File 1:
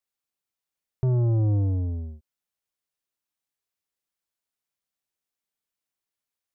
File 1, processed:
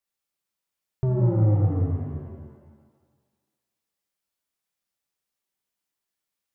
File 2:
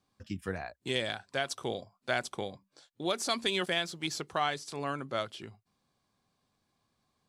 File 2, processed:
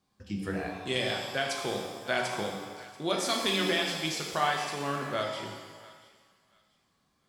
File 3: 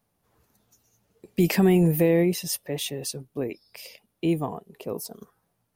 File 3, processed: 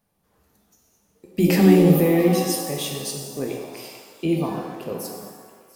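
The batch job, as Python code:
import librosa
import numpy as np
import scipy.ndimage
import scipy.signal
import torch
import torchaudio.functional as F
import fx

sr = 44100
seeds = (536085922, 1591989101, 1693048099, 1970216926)

p1 = x + fx.echo_thinned(x, sr, ms=687, feedback_pct=26, hz=970.0, wet_db=-19.5, dry=0)
y = fx.rev_shimmer(p1, sr, seeds[0], rt60_s=1.3, semitones=7, shimmer_db=-8, drr_db=0.5)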